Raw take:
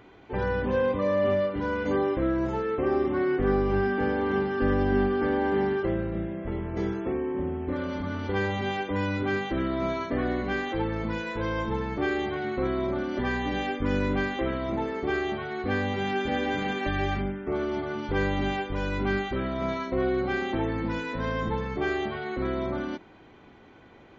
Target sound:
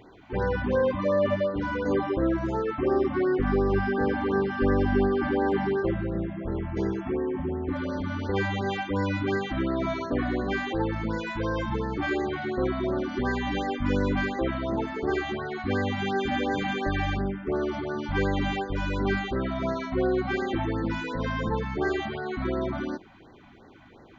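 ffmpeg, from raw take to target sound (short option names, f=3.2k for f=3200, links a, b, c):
-af "bandreject=f=426.2:t=h:w=4,bandreject=f=852.4:t=h:w=4,bandreject=f=1.2786k:t=h:w=4,bandreject=f=1.7048k:t=h:w=4,bandreject=f=2.131k:t=h:w=4,bandreject=f=2.5572k:t=h:w=4,bandreject=f=2.9834k:t=h:w=4,bandreject=f=3.4096k:t=h:w=4,bandreject=f=3.8358k:t=h:w=4,bandreject=f=4.262k:t=h:w=4,bandreject=f=4.6882k:t=h:w=4,bandreject=f=5.1144k:t=h:w=4,bandreject=f=5.5406k:t=h:w=4,afftfilt=real='re*(1-between(b*sr/1024,390*pow(2900/390,0.5+0.5*sin(2*PI*2.8*pts/sr))/1.41,390*pow(2900/390,0.5+0.5*sin(2*PI*2.8*pts/sr))*1.41))':imag='im*(1-between(b*sr/1024,390*pow(2900/390,0.5+0.5*sin(2*PI*2.8*pts/sr))/1.41,390*pow(2900/390,0.5+0.5*sin(2*PI*2.8*pts/sr))*1.41))':win_size=1024:overlap=0.75,volume=1.5dB"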